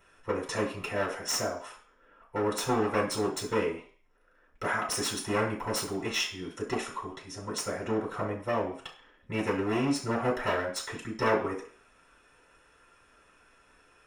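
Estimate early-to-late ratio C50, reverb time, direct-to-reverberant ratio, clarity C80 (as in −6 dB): 7.5 dB, 0.45 s, −6.5 dB, 12.0 dB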